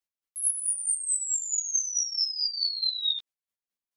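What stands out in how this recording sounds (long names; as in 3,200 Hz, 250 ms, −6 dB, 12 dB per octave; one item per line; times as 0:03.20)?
chopped level 4.6 Hz, depth 65%, duty 30%
a shimmering, thickened sound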